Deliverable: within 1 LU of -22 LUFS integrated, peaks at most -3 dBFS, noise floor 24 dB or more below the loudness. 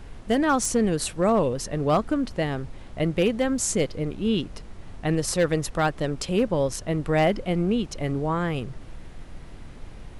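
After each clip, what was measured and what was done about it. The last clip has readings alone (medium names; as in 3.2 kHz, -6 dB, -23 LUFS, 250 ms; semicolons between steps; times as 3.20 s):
clipped samples 0.4%; clipping level -14.0 dBFS; noise floor -42 dBFS; noise floor target -49 dBFS; loudness -25.0 LUFS; peak level -14.0 dBFS; loudness target -22.0 LUFS
-> clip repair -14 dBFS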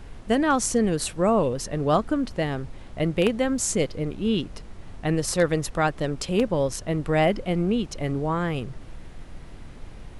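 clipped samples 0.0%; noise floor -42 dBFS; noise floor target -49 dBFS
-> noise print and reduce 7 dB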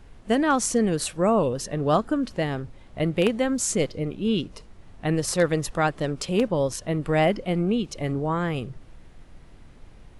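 noise floor -49 dBFS; loudness -25.0 LUFS; peak level -5.0 dBFS; loudness target -22.0 LUFS
-> trim +3 dB; peak limiter -3 dBFS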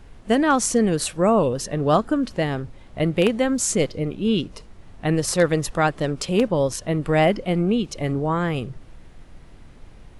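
loudness -22.0 LUFS; peak level -3.0 dBFS; noise floor -46 dBFS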